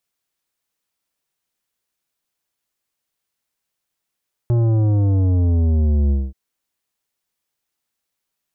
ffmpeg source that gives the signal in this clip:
-f lavfi -i "aevalsrc='0.188*clip((1.83-t)/0.22,0,1)*tanh(3.55*sin(2*PI*120*1.83/log(65/120)*(exp(log(65/120)*t/1.83)-1)))/tanh(3.55)':d=1.83:s=44100"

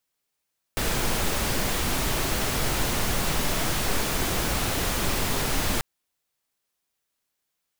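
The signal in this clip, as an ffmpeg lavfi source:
-f lavfi -i "anoisesrc=c=pink:a=0.288:d=5.04:r=44100:seed=1"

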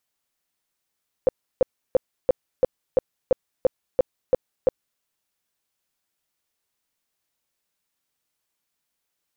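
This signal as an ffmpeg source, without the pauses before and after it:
-f lavfi -i "aevalsrc='0.251*sin(2*PI*516*mod(t,0.34))*lt(mod(t,0.34),9/516)':d=3.74:s=44100"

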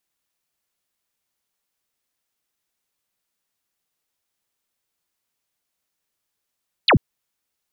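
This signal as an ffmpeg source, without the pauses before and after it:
-f lavfi -i "aevalsrc='0.299*clip(t/0.002,0,1)*clip((0.09-t)/0.002,0,1)*sin(2*PI*4800*0.09/log(88/4800)*(exp(log(88/4800)*t/0.09)-1))':d=0.09:s=44100"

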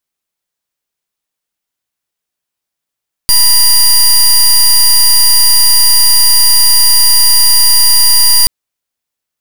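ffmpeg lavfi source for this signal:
-f lavfi -i "aevalsrc='0.501*(2*lt(mod(4790*t,1),0.2)-1)':d=5.18:s=44100"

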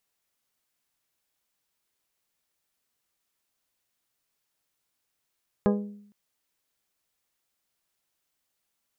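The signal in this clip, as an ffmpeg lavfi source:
-f lavfi -i "aevalsrc='0.119*pow(10,-3*t/0.71)*sin(2*PI*205*t)+0.0841*pow(10,-3*t/0.437)*sin(2*PI*410*t)+0.0596*pow(10,-3*t/0.385)*sin(2*PI*492*t)+0.0422*pow(10,-3*t/0.329)*sin(2*PI*615*t)+0.0299*pow(10,-3*t/0.269)*sin(2*PI*820*t)+0.0211*pow(10,-3*t/0.23)*sin(2*PI*1025*t)+0.015*pow(10,-3*t/0.203)*sin(2*PI*1230*t)+0.0106*pow(10,-3*t/0.166)*sin(2*PI*1640*t)':d=0.46:s=44100"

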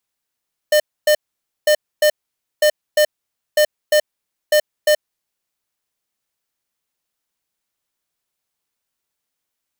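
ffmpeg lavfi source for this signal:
-f lavfi -i "aevalsrc='0.237*(2*lt(mod(604*t,1),0.5)-1)*clip(min(mod(mod(t,0.95),0.35),0.08-mod(mod(t,0.95),0.35))/0.005,0,1)*lt(mod(t,0.95),0.7)':d=4.75:s=44100"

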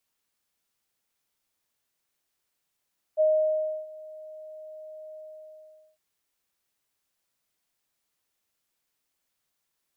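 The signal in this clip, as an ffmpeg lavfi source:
-f lavfi -i "aevalsrc='0.133*sin(2*PI*622*t)':d=2.805:s=44100,afade=t=in:d=0.034,afade=t=out:st=0.034:d=0.658:silence=0.075,afade=t=out:st=1.99:d=0.815"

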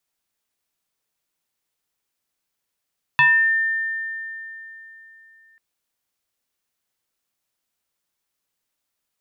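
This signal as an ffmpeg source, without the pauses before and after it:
-f lavfi -i "aevalsrc='0.299*pow(10,-3*t/3.4)*sin(2*PI*1800*t+1.3*pow(10,-3*t/0.48)*sin(2*PI*0.46*1800*t))':d=2.39:s=44100"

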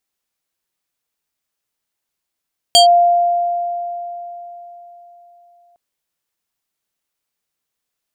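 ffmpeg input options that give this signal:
-f lavfi -i "aevalsrc='0.596*pow(10,-3*t/3.92)*sin(2*PI*697*t+1.7*clip(1-t/0.12,0,1)*sin(2*PI*5.6*697*t))':d=3.01:s=44100"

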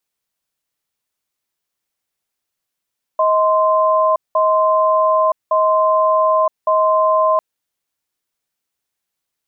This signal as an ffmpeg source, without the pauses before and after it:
-f lavfi -i "aevalsrc='0.2*(sin(2*PI*632*t)+sin(2*PI*1040*t))*clip(min(mod(t,1.16),0.97-mod(t,1.16))/0.005,0,1)':d=4.2:s=44100"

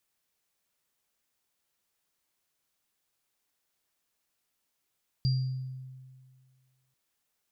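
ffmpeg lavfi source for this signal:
-f lavfi -i "aevalsrc='0.0794*pow(10,-3*t/1.88)*sin(2*PI*130*t)+0.0224*pow(10,-3*t/0.65)*sin(2*PI*4760*t)':d=1.69:s=44100"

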